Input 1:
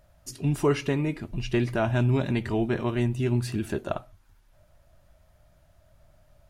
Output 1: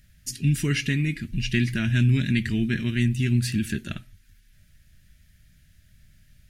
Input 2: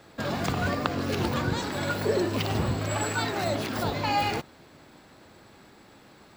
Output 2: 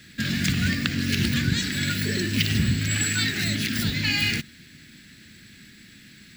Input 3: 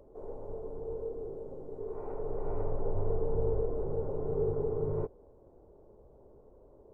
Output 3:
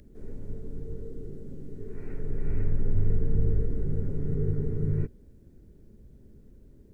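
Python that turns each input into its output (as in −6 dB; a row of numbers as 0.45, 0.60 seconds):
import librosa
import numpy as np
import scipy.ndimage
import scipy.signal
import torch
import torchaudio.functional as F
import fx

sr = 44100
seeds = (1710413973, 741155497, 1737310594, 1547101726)

y = fx.curve_eq(x, sr, hz=(110.0, 220.0, 510.0, 780.0, 1100.0, 1700.0), db=(0, 3, -20, -26, -22, 4))
y = y * 10.0 ** (-26 / 20.0) / np.sqrt(np.mean(np.square(y)))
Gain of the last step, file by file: +3.5, +5.0, +9.0 decibels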